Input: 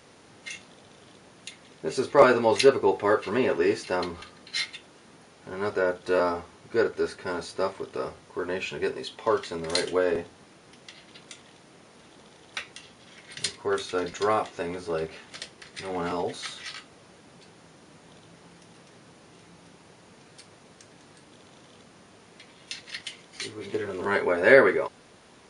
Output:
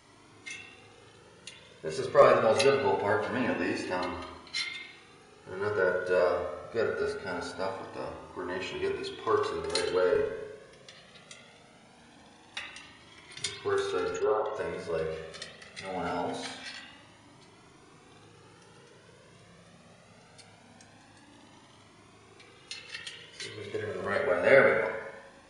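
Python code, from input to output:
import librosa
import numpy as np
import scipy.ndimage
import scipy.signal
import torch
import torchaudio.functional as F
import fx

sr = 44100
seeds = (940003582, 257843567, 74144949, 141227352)

y = fx.envelope_sharpen(x, sr, power=2.0, at=(14.15, 14.56))
y = fx.rev_spring(y, sr, rt60_s=1.1, pass_ms=(38, 59), chirp_ms=80, drr_db=2.0)
y = fx.comb_cascade(y, sr, direction='rising', hz=0.23)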